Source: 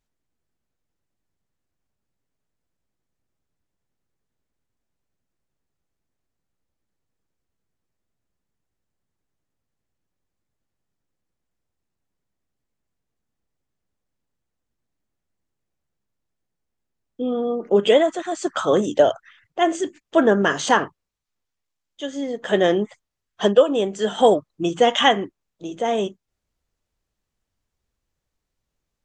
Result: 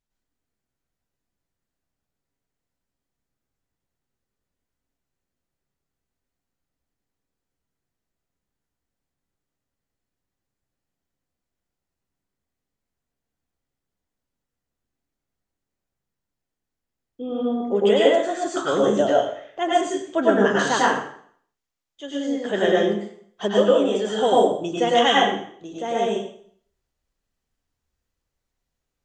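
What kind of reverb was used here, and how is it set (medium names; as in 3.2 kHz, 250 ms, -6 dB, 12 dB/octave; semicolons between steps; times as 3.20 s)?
plate-style reverb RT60 0.58 s, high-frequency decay 0.95×, pre-delay 85 ms, DRR -5 dB; trim -6.5 dB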